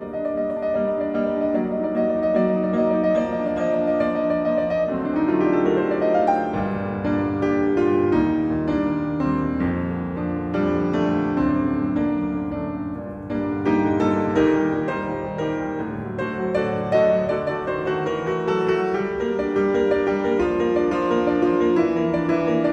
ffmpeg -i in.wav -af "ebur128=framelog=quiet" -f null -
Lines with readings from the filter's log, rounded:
Integrated loudness:
  I:         -21.8 LUFS
  Threshold: -31.8 LUFS
Loudness range:
  LRA:         2.4 LU
  Threshold: -41.9 LUFS
  LRA low:   -23.1 LUFS
  LRA high:  -20.6 LUFS